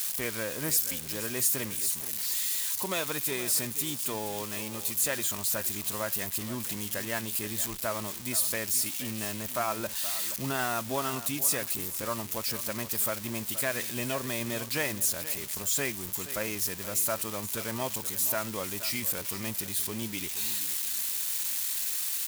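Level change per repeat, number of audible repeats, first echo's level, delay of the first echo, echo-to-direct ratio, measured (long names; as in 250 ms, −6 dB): −14.5 dB, 2, −14.0 dB, 474 ms, −14.0 dB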